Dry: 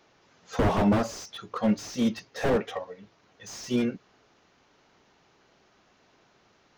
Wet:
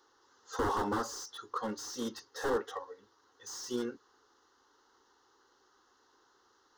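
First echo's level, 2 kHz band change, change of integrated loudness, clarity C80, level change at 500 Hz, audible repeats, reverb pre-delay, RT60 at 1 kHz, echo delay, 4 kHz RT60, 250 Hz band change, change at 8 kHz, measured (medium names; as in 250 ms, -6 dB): no echo, -6.0 dB, -9.0 dB, no reverb, -7.5 dB, no echo, no reverb, no reverb, no echo, no reverb, -13.0 dB, -1.5 dB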